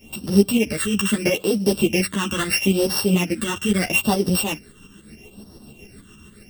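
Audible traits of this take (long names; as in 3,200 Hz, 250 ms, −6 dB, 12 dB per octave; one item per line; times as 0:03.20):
a buzz of ramps at a fixed pitch in blocks of 16 samples
phaser sweep stages 8, 0.77 Hz, lowest notch 640–2,400 Hz
tremolo saw up 7 Hz, depth 60%
a shimmering, thickened sound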